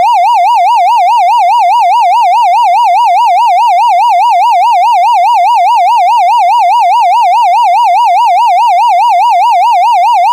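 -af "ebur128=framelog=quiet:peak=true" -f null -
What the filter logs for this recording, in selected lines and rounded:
Integrated loudness:
  I:          -6.3 LUFS
  Threshold: -16.3 LUFS
Loudness range:
  LRA:         0.0 LU
  Threshold: -26.3 LUFS
  LRA low:    -6.3 LUFS
  LRA high:   -6.3 LUFS
True peak:
  Peak:       -1.1 dBFS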